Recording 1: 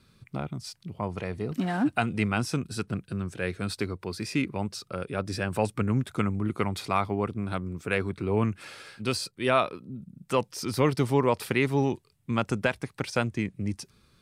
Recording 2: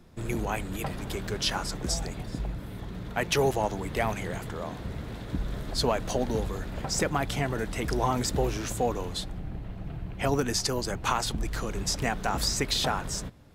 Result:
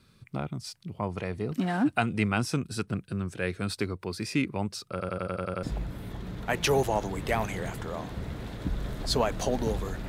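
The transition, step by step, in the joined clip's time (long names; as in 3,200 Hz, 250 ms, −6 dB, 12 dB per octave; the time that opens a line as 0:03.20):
recording 1
0:04.91: stutter in place 0.09 s, 8 plays
0:05.63: continue with recording 2 from 0:02.31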